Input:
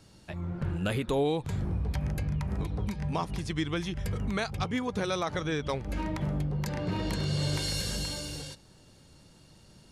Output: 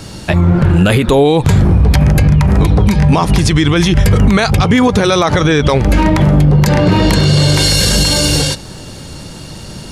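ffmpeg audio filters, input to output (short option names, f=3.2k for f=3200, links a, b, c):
-af "alimiter=level_in=28dB:limit=-1dB:release=50:level=0:latency=1,volume=-1dB"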